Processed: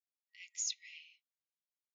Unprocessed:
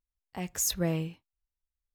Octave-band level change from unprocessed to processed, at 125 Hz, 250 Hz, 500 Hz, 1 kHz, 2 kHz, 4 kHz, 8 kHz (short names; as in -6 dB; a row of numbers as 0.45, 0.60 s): under -40 dB, under -40 dB, under -40 dB, under -40 dB, -8.5 dB, -6.0 dB, -7.5 dB